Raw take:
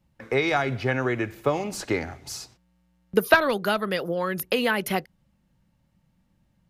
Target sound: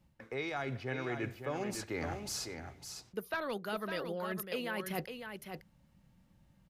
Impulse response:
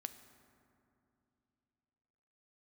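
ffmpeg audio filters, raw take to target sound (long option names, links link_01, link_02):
-af "areverse,acompressor=threshold=-36dB:ratio=6,areverse,aecho=1:1:556:0.447"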